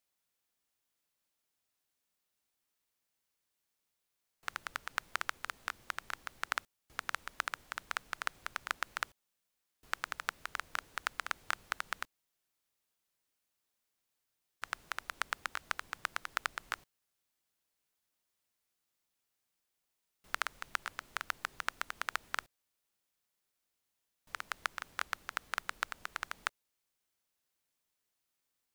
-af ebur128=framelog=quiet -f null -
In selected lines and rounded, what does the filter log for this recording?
Integrated loudness:
  I:         -40.3 LUFS
  Threshold: -50.4 LUFS
Loudness range:
  LRA:         5.8 LU
  Threshold: -62.3 LUFS
  LRA low:   -46.3 LUFS
  LRA high:  -40.5 LUFS